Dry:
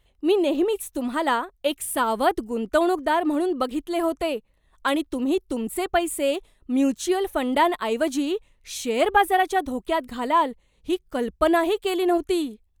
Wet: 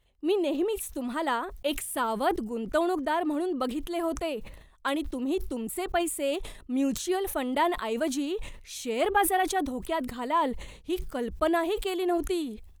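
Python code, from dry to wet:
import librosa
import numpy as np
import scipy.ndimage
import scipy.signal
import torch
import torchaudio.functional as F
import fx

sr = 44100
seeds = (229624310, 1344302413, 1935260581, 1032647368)

y = fx.sustainer(x, sr, db_per_s=71.0)
y = F.gain(torch.from_numpy(y), -6.0).numpy()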